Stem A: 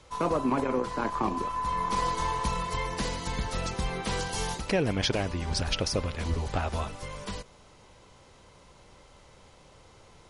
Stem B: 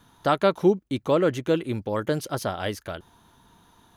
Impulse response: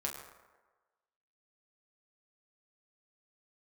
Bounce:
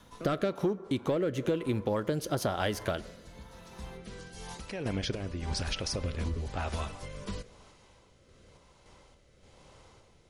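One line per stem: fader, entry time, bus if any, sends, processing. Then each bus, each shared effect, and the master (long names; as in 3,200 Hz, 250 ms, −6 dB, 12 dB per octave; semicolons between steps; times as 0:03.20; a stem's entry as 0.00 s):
−0.5 dB, 0.00 s, send −14 dB, brickwall limiter −21 dBFS, peak gain reduction 5.5 dB; sample-and-hold tremolo; automatic ducking −23 dB, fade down 1.00 s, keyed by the second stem
+2.5 dB, 0.00 s, send −15 dB, leveller curve on the samples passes 1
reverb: on, RT60 1.3 s, pre-delay 7 ms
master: rotating-speaker cabinet horn 1 Hz; downward compressor 12 to 1, threshold −26 dBFS, peak gain reduction 18 dB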